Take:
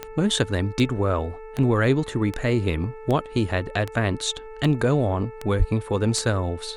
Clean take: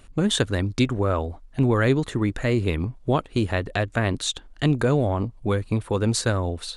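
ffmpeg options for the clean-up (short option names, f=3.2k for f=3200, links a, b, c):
-filter_complex "[0:a]adeclick=t=4,bandreject=f=439.6:t=h:w=4,bandreject=f=879.2:t=h:w=4,bandreject=f=1.3188k:t=h:w=4,bandreject=f=1.7584k:t=h:w=4,bandreject=f=2.198k:t=h:w=4,bandreject=f=2.6376k:t=h:w=4,asplit=3[a][b][c];[a]afade=t=out:st=5.58:d=0.02[d];[b]highpass=f=140:w=0.5412,highpass=f=140:w=1.3066,afade=t=in:st=5.58:d=0.02,afade=t=out:st=5.7:d=0.02[e];[c]afade=t=in:st=5.7:d=0.02[f];[d][e][f]amix=inputs=3:normalize=0"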